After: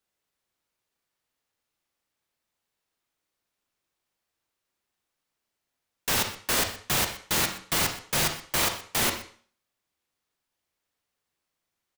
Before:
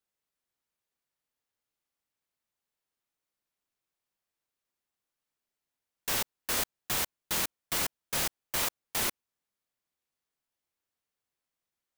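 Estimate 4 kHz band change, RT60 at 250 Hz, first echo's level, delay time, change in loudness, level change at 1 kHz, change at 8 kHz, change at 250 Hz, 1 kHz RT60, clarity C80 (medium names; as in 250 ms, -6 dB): +6.5 dB, 0.45 s, -17.0 dB, 123 ms, +5.0 dB, +7.0 dB, +5.0 dB, +8.5 dB, 0.50 s, 12.0 dB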